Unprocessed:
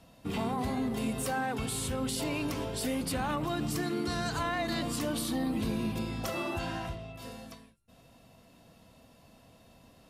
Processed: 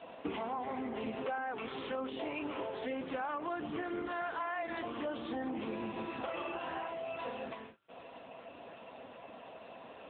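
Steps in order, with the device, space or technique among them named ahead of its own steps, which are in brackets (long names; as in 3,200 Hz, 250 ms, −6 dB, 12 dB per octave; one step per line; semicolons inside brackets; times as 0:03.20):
0:04.04–0:05.44: high-pass filter 72 Hz 24 dB per octave
voicemail (band-pass filter 410–2,800 Hz; downward compressor 8 to 1, threshold −50 dBFS, peak gain reduction 19.5 dB; level +15.5 dB; AMR narrowband 6.7 kbit/s 8,000 Hz)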